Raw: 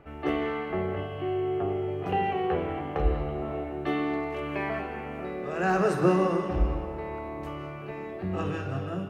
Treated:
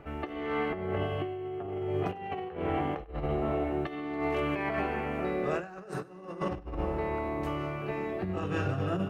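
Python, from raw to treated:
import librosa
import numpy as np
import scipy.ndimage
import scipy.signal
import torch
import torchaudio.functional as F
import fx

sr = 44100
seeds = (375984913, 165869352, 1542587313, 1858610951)

y = fx.over_compress(x, sr, threshold_db=-32.0, ratio=-0.5)
y = y + 10.0 ** (-21.5 / 20.0) * np.pad(y, (int(99 * sr / 1000.0), 0))[:len(y)]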